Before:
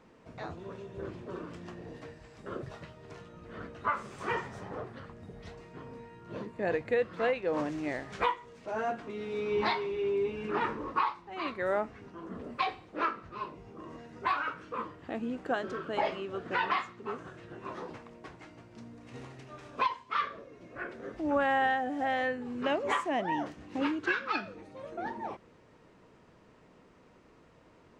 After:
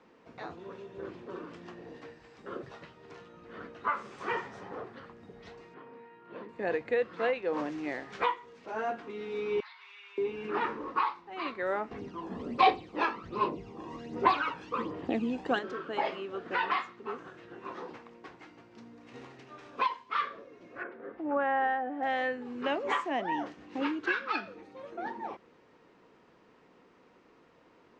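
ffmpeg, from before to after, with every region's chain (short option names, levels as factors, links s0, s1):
-filter_complex "[0:a]asettb=1/sr,asplit=3[s0][s1][s2];[s0]atrim=end=5.744[s3];[s1]atrim=start=5.74:end=6.49,asetpts=PTS-STARTPTS,afade=t=in:d=0.004:c=qsin,afade=t=out:st=0.746:d=0.004:c=qsin,highpass=130,lowpass=2800,lowshelf=f=420:g=-5.5[s4];[s2]atrim=start=6.486[s5];[s3][s4]acrossfade=d=0.004:c1=hsin:c2=qsin[s6];[s6][s5]acrossfade=d=0.004:c1=qsin:c2=hsin,asettb=1/sr,asplit=3[s7][s8][s9];[s7]atrim=end=9.604[s10];[s8]atrim=start=9.6:end=10.18,asetpts=PTS-STARTPTS,afade=t=in:d=0.004:c=qsin,afade=t=out:st=0.576:d=0.004:c=qsin,highpass=f=1200:w=0.5412,highpass=f=1200:w=1.3066,acompressor=threshold=0.00447:ratio=16:attack=3.2:release=140:knee=1:detection=peak[s11];[s9]atrim=start=10.176[s12];[s10][s11]acrossfade=d=0.004:c1=hsin:c2=qsin[s13];[s13][s12]acrossfade=d=0.004:c1=qsin:c2=hsin,asettb=1/sr,asplit=3[s14][s15][s16];[s14]atrim=end=11.914[s17];[s15]atrim=start=11.91:end=15.59,asetpts=PTS-STARTPTS,afade=t=in:d=0.004:c=qsin,afade=t=out:st=3.676:d=0.004:c=qsin,equalizer=f=1500:t=o:w=1:g=-9,acontrast=77,aphaser=in_gain=1:out_gain=1:delay=1.2:decay=0.58:speed=1.3:type=sinusoidal[s18];[s16]atrim=start=15.586[s19];[s17][s18]acrossfade=d=0.004:c1=hsin:c2=qsin[s20];[s20][s19]acrossfade=d=0.004:c1=qsin:c2=hsin,asettb=1/sr,asplit=3[s21][s22][s23];[s21]atrim=end=20.834[s24];[s22]atrim=start=20.83:end=22.03,asetpts=PTS-STARTPTS,afade=t=in:d=0.004:c=qsin,afade=t=out:st=1.196:d=0.004:c=qsin,lowpass=1800,lowshelf=f=120:g=-11[s25];[s23]atrim=start=22.026[s26];[s24][s25]acrossfade=d=0.004:c1=hsin:c2=qsin[s27];[s27][s26]acrossfade=d=0.004:c1=qsin:c2=hsin,acrossover=split=200 6700:gain=0.251 1 0.126[s28][s29][s30];[s28][s29][s30]amix=inputs=3:normalize=0,bandreject=f=620:w=12"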